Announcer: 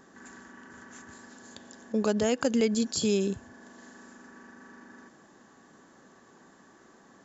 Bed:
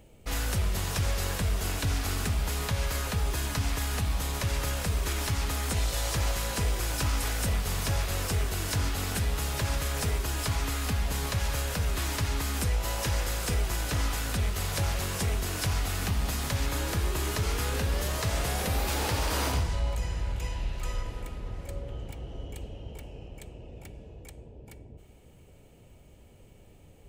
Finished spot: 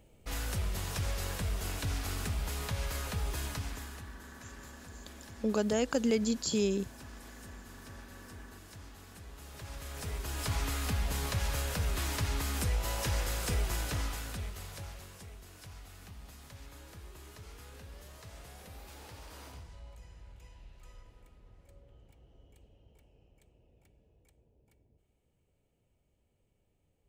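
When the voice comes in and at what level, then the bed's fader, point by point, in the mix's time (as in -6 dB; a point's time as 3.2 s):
3.50 s, -3.5 dB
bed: 3.47 s -6 dB
4.23 s -22 dB
9.23 s -22 dB
10.55 s -3.5 dB
13.78 s -3.5 dB
15.3 s -21 dB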